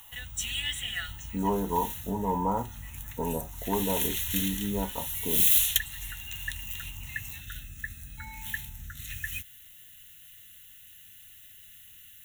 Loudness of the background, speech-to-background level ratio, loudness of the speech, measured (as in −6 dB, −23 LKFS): −29.5 LKFS, −3.0 dB, −32.5 LKFS